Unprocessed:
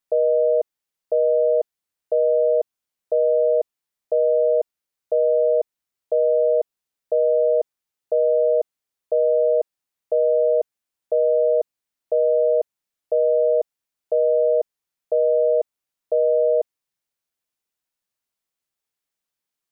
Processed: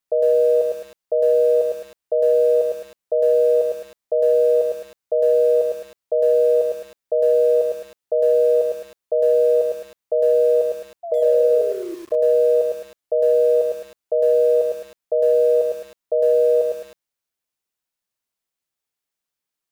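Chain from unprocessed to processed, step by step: painted sound fall, 11.03–11.95, 330–700 Hz -30 dBFS; lo-fi delay 0.106 s, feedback 35%, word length 7-bit, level -3.5 dB

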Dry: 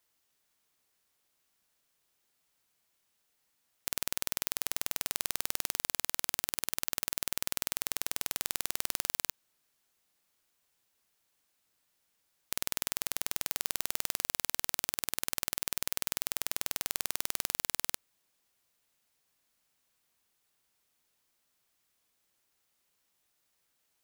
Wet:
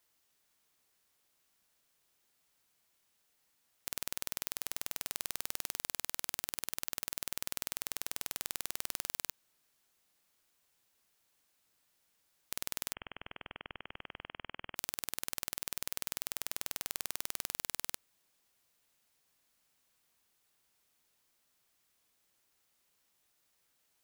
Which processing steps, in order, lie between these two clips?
soft clip -8.5 dBFS, distortion -37 dB; 12.93–14.76 inverted band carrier 3200 Hz; gain +1 dB

